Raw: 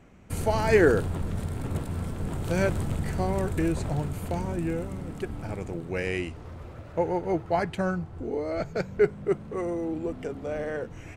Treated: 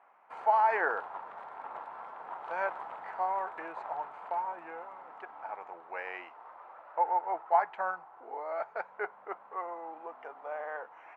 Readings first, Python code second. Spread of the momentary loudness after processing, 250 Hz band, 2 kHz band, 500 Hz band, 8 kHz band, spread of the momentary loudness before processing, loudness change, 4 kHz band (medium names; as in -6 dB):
17 LU, -26.0 dB, -4.0 dB, -11.0 dB, under -30 dB, 10 LU, -6.0 dB, under -15 dB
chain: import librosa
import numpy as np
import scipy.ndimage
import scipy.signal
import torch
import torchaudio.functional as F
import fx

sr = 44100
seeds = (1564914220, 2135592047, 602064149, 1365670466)

y = fx.ladder_bandpass(x, sr, hz=1000.0, resonance_pct=55)
y = fx.peak_eq(y, sr, hz=1200.0, db=11.0, octaves=3.0)